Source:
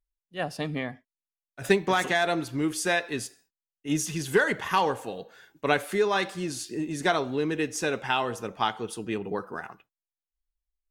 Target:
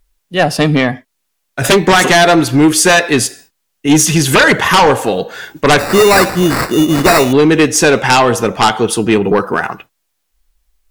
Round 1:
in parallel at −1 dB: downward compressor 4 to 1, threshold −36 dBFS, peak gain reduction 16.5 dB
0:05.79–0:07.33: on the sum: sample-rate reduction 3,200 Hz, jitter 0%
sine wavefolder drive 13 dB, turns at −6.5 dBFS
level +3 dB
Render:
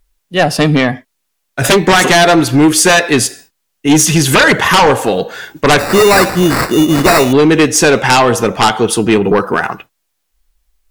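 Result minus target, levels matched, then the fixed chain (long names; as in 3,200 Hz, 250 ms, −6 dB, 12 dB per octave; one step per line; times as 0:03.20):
downward compressor: peak gain reduction −7 dB
in parallel at −1 dB: downward compressor 4 to 1, threshold −45 dBFS, peak gain reduction 23.5 dB
0:05.79–0:07.33: on the sum: sample-rate reduction 3,200 Hz, jitter 0%
sine wavefolder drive 13 dB, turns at −6.5 dBFS
level +3 dB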